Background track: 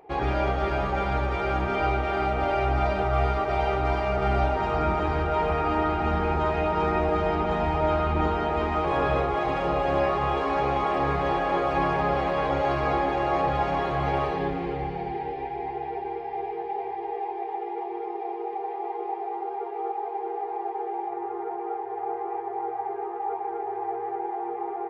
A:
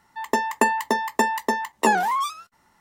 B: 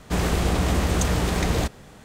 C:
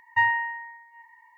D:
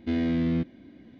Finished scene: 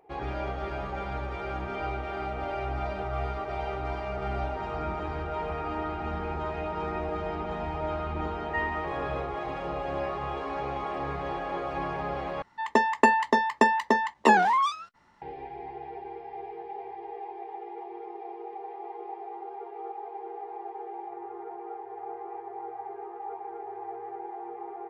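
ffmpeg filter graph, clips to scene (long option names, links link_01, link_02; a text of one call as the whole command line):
ffmpeg -i bed.wav -i cue0.wav -i cue1.wav -i cue2.wav -filter_complex "[0:a]volume=-8dB[link_01];[1:a]lowpass=4300[link_02];[link_01]asplit=2[link_03][link_04];[link_03]atrim=end=12.424[link_05];[link_02]atrim=end=2.8[link_06];[link_04]atrim=start=15.216[link_07];[3:a]atrim=end=1.37,asetpts=PTS-STARTPTS,volume=-10dB,afade=type=in:duration=0.004:curve=hsin,afade=type=out:start_time=1.366:duration=0.004:curve=hsin,adelay=8370[link_08];[link_05][link_06]acrossfade=duration=0.004:curve1=hsin:curve2=hsin[link_09];[link_09][link_07]acrossfade=duration=0.004:curve1=hsin:curve2=hsin[link_10];[link_10][link_08]amix=inputs=2:normalize=0" out.wav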